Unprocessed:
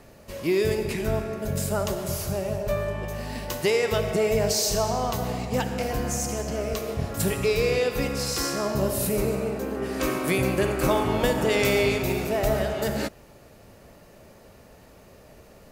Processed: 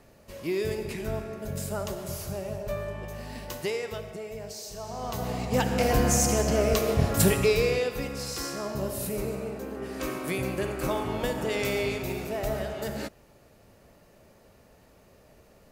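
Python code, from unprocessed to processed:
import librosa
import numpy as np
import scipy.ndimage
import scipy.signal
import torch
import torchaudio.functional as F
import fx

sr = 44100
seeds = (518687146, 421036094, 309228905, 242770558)

y = fx.gain(x, sr, db=fx.line((3.57, -6.0), (4.25, -16.0), (4.75, -16.0), (5.18, -4.0), (5.93, 5.0), (7.18, 5.0), (8.03, -6.5)))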